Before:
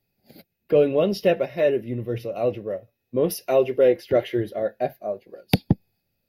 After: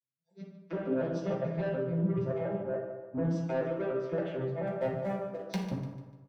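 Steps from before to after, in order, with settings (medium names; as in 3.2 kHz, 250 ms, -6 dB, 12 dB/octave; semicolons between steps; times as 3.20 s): vocoder on a broken chord major triad, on C3, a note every 144 ms; spectral noise reduction 26 dB; level rider; 4.67–5.59 s: waveshaping leveller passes 1; compression 3:1, threshold -31 dBFS, peak gain reduction 18 dB; flange 0.59 Hz, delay 0.4 ms, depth 3.7 ms, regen -69%; saturation -30.5 dBFS, distortion -13 dB; 2.38–3.23 s: distance through air 310 m; feedback delay 148 ms, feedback 37%, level -13 dB; reverberation RT60 1.2 s, pre-delay 3 ms, DRR -3 dB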